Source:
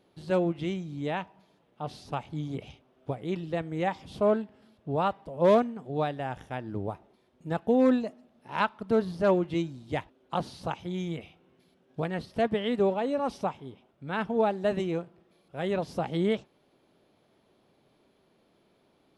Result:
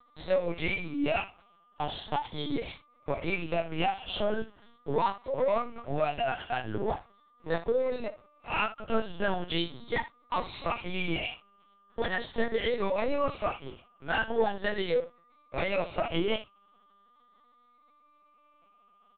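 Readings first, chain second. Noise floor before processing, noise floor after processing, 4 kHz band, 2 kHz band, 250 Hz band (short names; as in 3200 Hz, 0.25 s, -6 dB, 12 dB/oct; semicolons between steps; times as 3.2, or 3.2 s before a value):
-67 dBFS, -64 dBFS, +6.0 dB, +5.0 dB, -6.0 dB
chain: moving spectral ripple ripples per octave 1, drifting +0.4 Hz, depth 12 dB; HPF 780 Hz 6 dB/oct; dynamic EQ 2900 Hz, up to +4 dB, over -52 dBFS, Q 1.2; comb 4.3 ms, depth 32%; compressor 4:1, threshold -37 dBFS, peak gain reduction 15 dB; sample leveller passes 2; whine 1200 Hz -59 dBFS; on a send: early reflections 18 ms -4.5 dB, 71 ms -13 dB; on the sum: LPC vocoder at 8 kHz pitch kept; gain +2.5 dB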